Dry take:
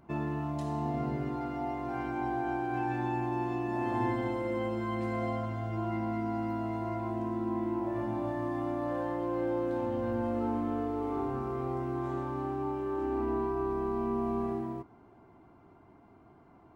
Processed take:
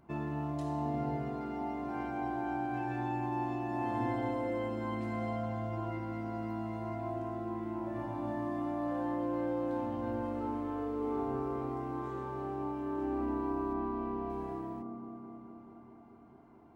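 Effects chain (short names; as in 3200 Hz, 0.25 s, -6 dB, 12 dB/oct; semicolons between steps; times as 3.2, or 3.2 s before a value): 13.73–14.3 LPF 4200 Hz 12 dB/oct; band-limited delay 0.214 s, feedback 73%, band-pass 410 Hz, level -4.5 dB; gain -3.5 dB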